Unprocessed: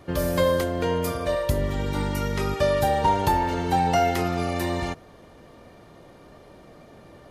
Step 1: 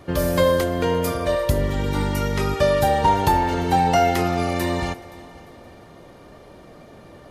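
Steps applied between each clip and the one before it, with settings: multi-head delay 174 ms, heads second and third, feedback 40%, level -22 dB; trim +3.5 dB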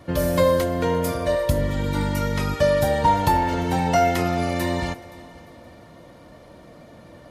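comb of notches 400 Hz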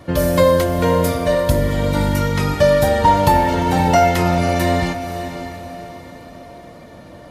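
echo that smears into a reverb 545 ms, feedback 42%, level -10 dB; trim +5 dB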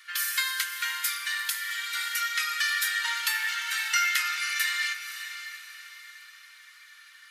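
steep high-pass 1.4 kHz 48 dB/octave

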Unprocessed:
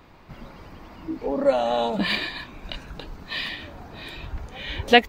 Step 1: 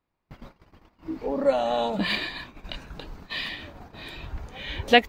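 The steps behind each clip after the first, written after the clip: gate -40 dBFS, range -28 dB; trim -2 dB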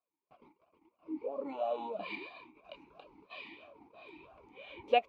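talking filter a-u 3 Hz; trim -1 dB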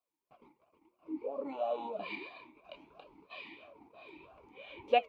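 flange 0.6 Hz, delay 4.9 ms, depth 8.9 ms, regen -87%; trim +4.5 dB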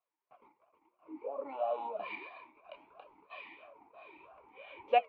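three-band isolator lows -14 dB, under 540 Hz, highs -19 dB, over 2.5 kHz; trim +3.5 dB

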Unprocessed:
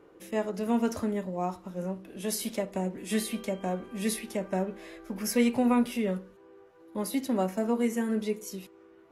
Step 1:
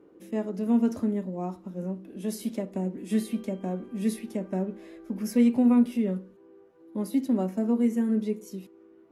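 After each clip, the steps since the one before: peaking EQ 250 Hz +13 dB 1.8 oct; trim -8 dB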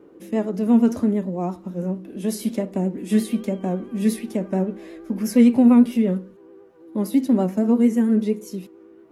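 vibrato 8.8 Hz 48 cents; trim +7 dB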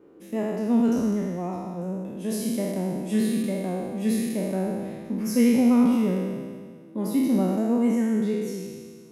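spectral sustain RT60 1.81 s; trim -6.5 dB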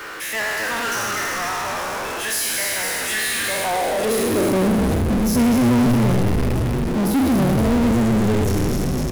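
high-pass sweep 1.6 kHz -> 64 Hz, 3.30–5.57 s; frequency-shifting echo 252 ms, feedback 55%, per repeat -120 Hz, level -5 dB; power-law waveshaper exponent 0.35; trim -3.5 dB

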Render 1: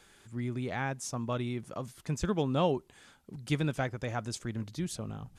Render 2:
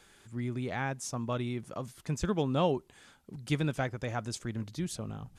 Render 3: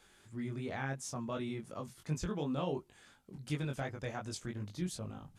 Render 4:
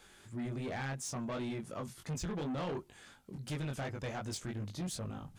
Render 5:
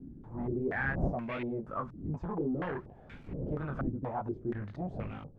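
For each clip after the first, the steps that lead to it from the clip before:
no audible change
peak limiter -23.5 dBFS, peak gain reduction 6.5 dB; chorus 2.8 Hz, delay 19.5 ms, depth 3.3 ms; trim -1 dB
saturation -38.5 dBFS, distortion -9 dB; trim +4.5 dB
zero-crossing glitches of -49.5 dBFS; wind noise 190 Hz -43 dBFS; step-sequenced low-pass 4.2 Hz 280–2300 Hz

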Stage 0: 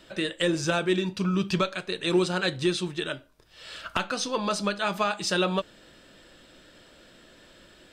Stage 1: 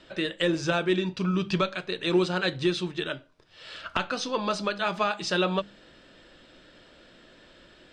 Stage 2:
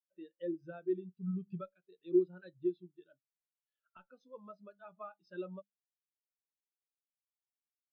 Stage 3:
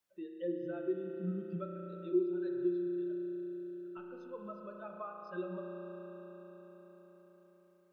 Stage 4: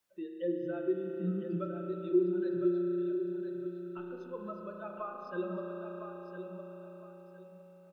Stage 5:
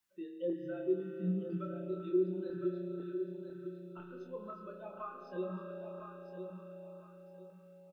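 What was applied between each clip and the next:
low-pass 5.2 kHz 12 dB/octave; hum notches 50/100/150/200 Hz
spectral contrast expander 2.5:1; trim -6 dB
spring tank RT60 3.8 s, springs 34 ms, chirp 35 ms, DRR 1.5 dB; three bands compressed up and down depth 40%; trim +1 dB
feedback delay 1009 ms, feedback 26%, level -8 dB; trim +3.5 dB
LFO notch saw up 2 Hz 470–2200 Hz; doubling 27 ms -5 dB; trim -3 dB

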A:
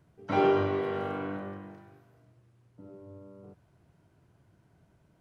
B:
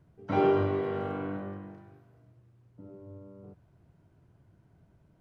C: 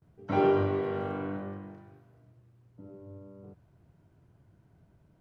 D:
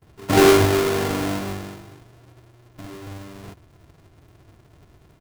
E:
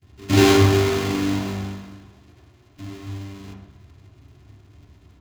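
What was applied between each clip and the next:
tilt EQ -1.5 dB/octave; trim -2 dB
gate with hold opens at -56 dBFS
square wave that keeps the level; comb 2.9 ms, depth 31%; trim +6 dB
reverberation RT60 1.0 s, pre-delay 3 ms, DRR 0 dB; trim -6 dB

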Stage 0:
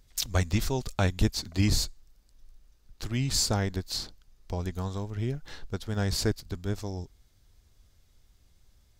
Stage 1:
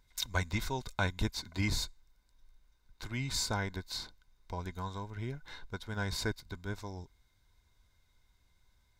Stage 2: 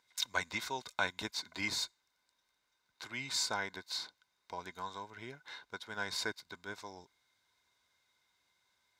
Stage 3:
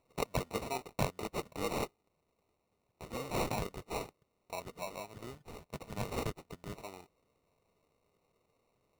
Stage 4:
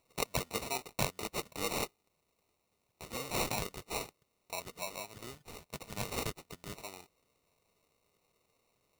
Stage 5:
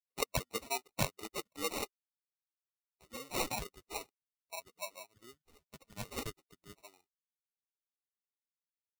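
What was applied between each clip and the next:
small resonant body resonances 1/1.5/2.1/3.7 kHz, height 14 dB, ringing for 25 ms; trim -8.5 dB
frequency weighting A
sample-and-hold 27×; trim +1 dB
treble shelf 2 kHz +10.5 dB; trim -2.5 dB
expander on every frequency bin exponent 2; trim +3 dB

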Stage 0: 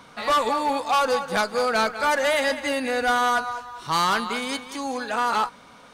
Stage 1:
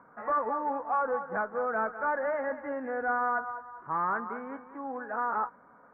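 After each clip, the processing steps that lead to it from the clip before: steep low-pass 1.7 kHz 48 dB/octave; bass shelf 130 Hz -11.5 dB; trim -7 dB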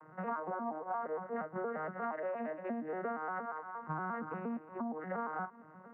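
vocoder on a broken chord minor triad, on D#3, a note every 117 ms; compression 6:1, threshold -39 dBFS, peak gain reduction 14 dB; trim +3 dB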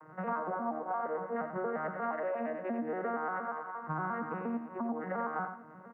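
feedback delay 90 ms, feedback 18%, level -8 dB; trim +2.5 dB

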